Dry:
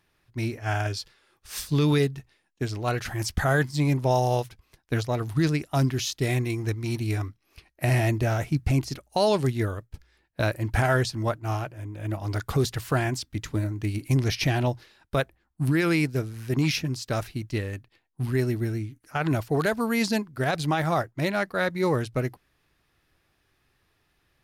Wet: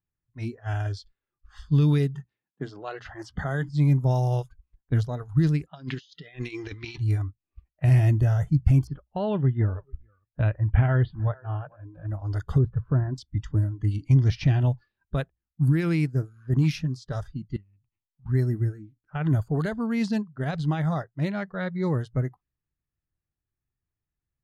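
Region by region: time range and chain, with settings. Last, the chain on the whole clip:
0:02.15–0:03.69: high-pass filter 180 Hz 6 dB per octave + mains-hum notches 60/120/180/240/300 Hz + multiband upward and downward compressor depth 40%
0:05.66–0:06.98: meter weighting curve D + low-pass that shuts in the quiet parts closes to 1,500 Hz, open at −21.5 dBFS + compressor whose output falls as the input rises −30 dBFS, ratio −0.5
0:08.87–0:11.81: Butterworth low-pass 3,300 Hz + single-tap delay 445 ms −21.5 dB
0:12.58–0:13.18: low-pass filter 1,100 Hz + parametric band 760 Hz −10 dB 0.21 octaves
0:13.91–0:14.61: low-pass filter 6,000 Hz + one half of a high-frequency compander encoder only
0:17.56–0:18.26: phaser with its sweep stopped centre 2,500 Hz, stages 8 + downward compressor 10 to 1, threshold −43 dBFS
whole clip: bass and treble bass +14 dB, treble −3 dB; low-pass that shuts in the quiet parts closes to 2,400 Hz, open at −10 dBFS; noise reduction from a noise print of the clip's start 20 dB; level −7.5 dB

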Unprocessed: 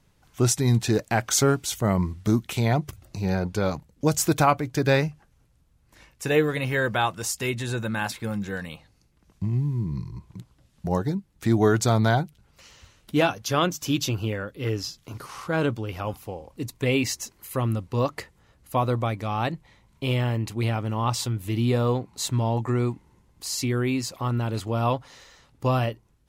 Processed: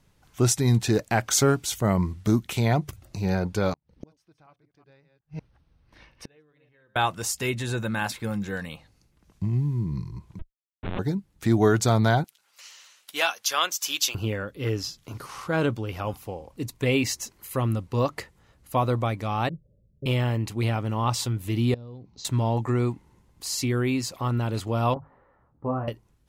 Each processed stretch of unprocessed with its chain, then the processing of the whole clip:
0:03.73–0:06.96: delay that plays each chunk backwards 185 ms, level −8 dB + Savitzky-Golay smoothing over 15 samples + gate with flip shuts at −25 dBFS, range −38 dB
0:10.39–0:10.99: comparator with hysteresis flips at −29 dBFS + linear-prediction vocoder at 8 kHz pitch kept
0:12.24–0:14.15: high-pass filter 890 Hz + high-shelf EQ 2,700 Hz +7 dB
0:19.49–0:20.06: Chebyshev low-pass with heavy ripple 610 Hz, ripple 3 dB + parametric band 290 Hz −7 dB 1.1 octaves
0:21.74–0:22.25: Butterworth low-pass 6,000 Hz 48 dB per octave + parametric band 1,500 Hz −14.5 dB 2.9 octaves + downward compressor 8 to 1, threshold −38 dBFS
0:24.94–0:25.88: low-pass filter 1,300 Hz 24 dB per octave + mains-hum notches 50/100/150 Hz + micro pitch shift up and down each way 18 cents
whole clip: no processing

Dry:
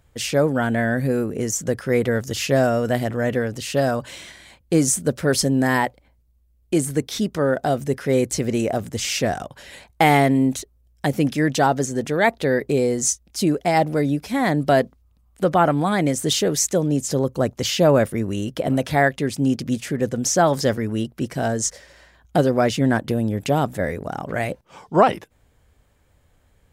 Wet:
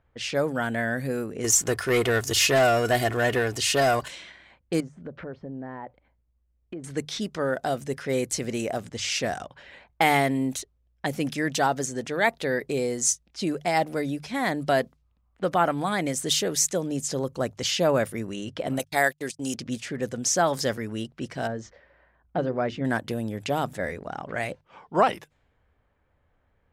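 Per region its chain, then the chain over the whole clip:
0:01.44–0:04.08: parametric band 260 Hz −5.5 dB 0.58 octaves + comb filter 2.8 ms, depth 55% + leveller curve on the samples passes 2
0:04.80–0:06.84: downward compressor 4 to 1, threshold −26 dBFS + treble cut that deepens with the level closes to 960 Hz, closed at −25.5 dBFS
0:18.79–0:19.54: noise gate −27 dBFS, range −59 dB + bass and treble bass −8 dB, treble +14 dB
0:21.47–0:22.85: head-to-tape spacing loss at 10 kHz 31 dB + mains-hum notches 50/100/150/200/250/300/350/400 Hz
whole clip: mains-hum notches 50/100/150 Hz; low-pass that shuts in the quiet parts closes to 1,700 Hz, open at −17.5 dBFS; tilt shelving filter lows −3.5 dB, about 710 Hz; level −5.5 dB

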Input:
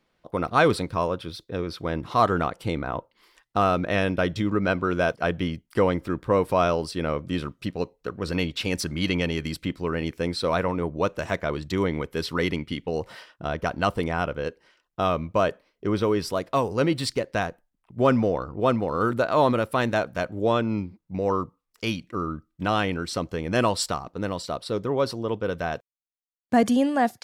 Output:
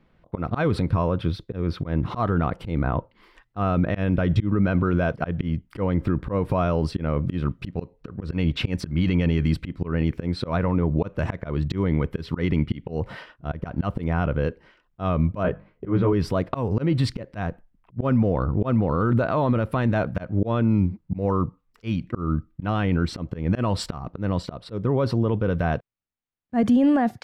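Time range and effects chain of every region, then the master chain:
0:15.43–0:16.13: low-pass filter 2,400 Hz + mains-hum notches 50/100/150/200 Hz + double-tracking delay 16 ms −2.5 dB
whole clip: bass and treble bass +11 dB, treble −15 dB; volume swells 247 ms; brickwall limiter −17.5 dBFS; level +5.5 dB

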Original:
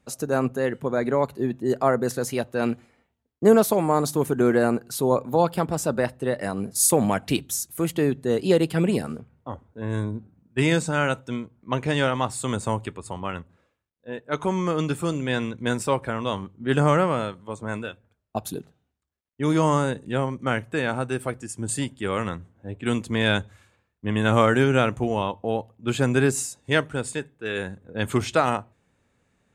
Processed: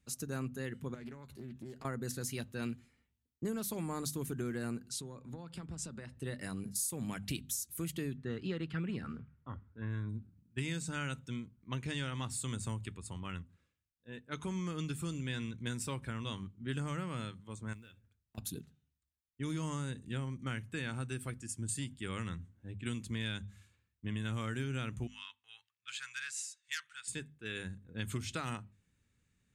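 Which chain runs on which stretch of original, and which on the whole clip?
0:00.94–0:01.85: downward compressor 12 to 1, threshold −30 dBFS + double-tracking delay 13 ms −12 dB + highs frequency-modulated by the lows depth 0.25 ms
0:04.89–0:06.17: low-pass filter 8,900 Hz 24 dB per octave + downward compressor 5 to 1, threshold −29 dBFS + multiband upward and downward expander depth 40%
0:08.17–0:10.09: low-pass filter 3,100 Hz + parametric band 1,400 Hz +10.5 dB 0.68 octaves + notch filter 1,500 Hz, Q 19
0:17.73–0:18.38: downward compressor 10 to 1, threshold −40 dBFS + floating-point word with a short mantissa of 4 bits
0:25.07–0:27.08: inverse Chebyshev high-pass filter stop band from 660 Hz + high-frequency loss of the air 66 metres + saturating transformer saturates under 4,000 Hz
whole clip: guitar amp tone stack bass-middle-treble 6-0-2; mains-hum notches 50/100/150/200/250 Hz; downward compressor 6 to 1, threshold −43 dBFS; level +9 dB

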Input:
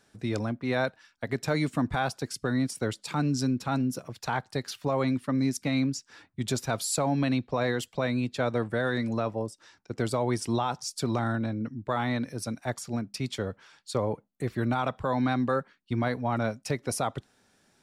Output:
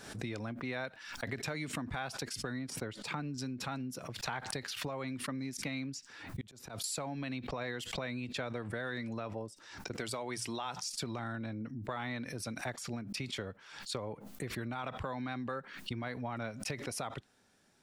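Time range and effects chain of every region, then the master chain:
0:02.59–0:03.38: de-essing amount 85% + high-shelf EQ 3,800 Hz −10.5 dB
0:06.41–0:06.84: volume swells 771 ms + multiband upward and downward compressor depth 40%
0:09.93–0:10.84: spectral tilt +1.5 dB per octave + mains-hum notches 60/120/180 Hz
whole clip: downward compressor 6 to 1, threshold −33 dBFS; dynamic equaliser 2,400 Hz, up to +7 dB, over −55 dBFS, Q 0.84; background raised ahead of every attack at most 67 dB per second; level −4 dB

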